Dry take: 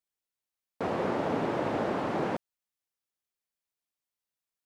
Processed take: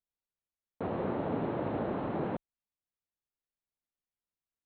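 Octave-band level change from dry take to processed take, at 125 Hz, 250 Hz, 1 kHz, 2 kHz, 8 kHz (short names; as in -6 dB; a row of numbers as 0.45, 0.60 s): 0.0 dB, -2.0 dB, -5.5 dB, -8.5 dB, n/a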